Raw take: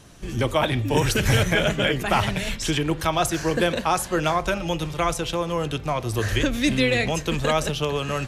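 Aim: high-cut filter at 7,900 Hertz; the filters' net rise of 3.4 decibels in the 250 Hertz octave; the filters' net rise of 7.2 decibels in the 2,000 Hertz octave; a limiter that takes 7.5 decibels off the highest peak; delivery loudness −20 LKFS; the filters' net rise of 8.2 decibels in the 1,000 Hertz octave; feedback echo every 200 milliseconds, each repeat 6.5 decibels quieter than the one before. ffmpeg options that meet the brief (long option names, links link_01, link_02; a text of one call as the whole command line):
ffmpeg -i in.wav -af "lowpass=7900,equalizer=frequency=250:width_type=o:gain=4,equalizer=frequency=1000:width_type=o:gain=8.5,equalizer=frequency=2000:width_type=o:gain=6.5,alimiter=limit=-9dB:level=0:latency=1,aecho=1:1:200|400|600|800|1000|1200:0.473|0.222|0.105|0.0491|0.0231|0.0109,volume=-0.5dB" out.wav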